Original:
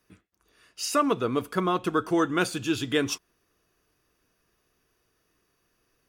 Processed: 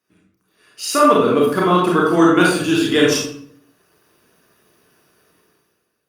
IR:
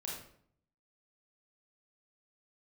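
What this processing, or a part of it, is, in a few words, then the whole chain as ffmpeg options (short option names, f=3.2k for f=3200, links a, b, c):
far-field microphone of a smart speaker: -filter_complex "[1:a]atrim=start_sample=2205[a];[0:a][a]afir=irnorm=-1:irlink=0,highpass=140,dynaudnorm=f=120:g=11:m=16.5dB" -ar 48000 -c:a libopus -b:a 48k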